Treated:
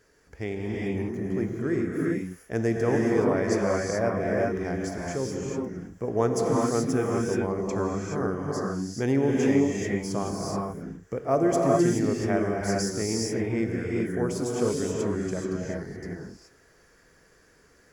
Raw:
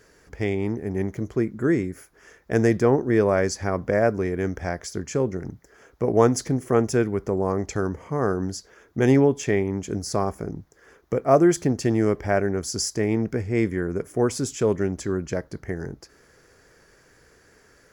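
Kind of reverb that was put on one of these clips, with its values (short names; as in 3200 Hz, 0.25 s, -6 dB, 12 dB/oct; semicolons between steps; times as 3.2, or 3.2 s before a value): non-linear reverb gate 0.45 s rising, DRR -2.5 dB; gain -7.5 dB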